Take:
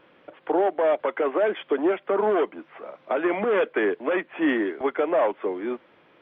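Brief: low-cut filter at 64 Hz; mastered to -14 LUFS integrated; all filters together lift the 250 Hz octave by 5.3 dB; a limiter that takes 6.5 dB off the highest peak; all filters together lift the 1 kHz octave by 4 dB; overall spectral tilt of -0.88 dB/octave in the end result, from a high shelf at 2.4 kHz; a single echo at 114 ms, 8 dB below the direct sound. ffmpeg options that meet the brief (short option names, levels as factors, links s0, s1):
-af "highpass=64,equalizer=f=250:t=o:g=7.5,equalizer=f=1000:t=o:g=5.5,highshelf=f=2400:g=-4.5,alimiter=limit=0.2:level=0:latency=1,aecho=1:1:114:0.398,volume=2.82"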